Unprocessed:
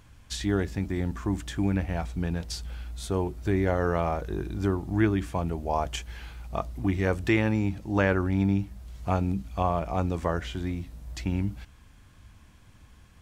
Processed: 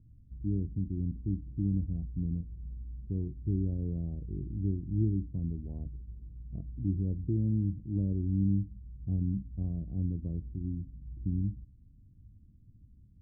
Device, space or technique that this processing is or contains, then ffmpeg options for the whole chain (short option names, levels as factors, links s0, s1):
the neighbour's flat through the wall: -af "lowpass=f=280:w=0.5412,lowpass=f=280:w=1.3066,equalizer=f=120:t=o:w=0.77:g=4.5,volume=0.596"